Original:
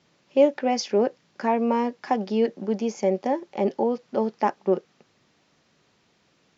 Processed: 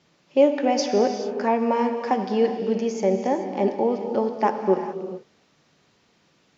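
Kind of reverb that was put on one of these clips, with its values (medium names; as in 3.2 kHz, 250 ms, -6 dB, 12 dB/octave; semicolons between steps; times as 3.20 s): gated-style reverb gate 460 ms flat, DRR 5.5 dB; trim +1 dB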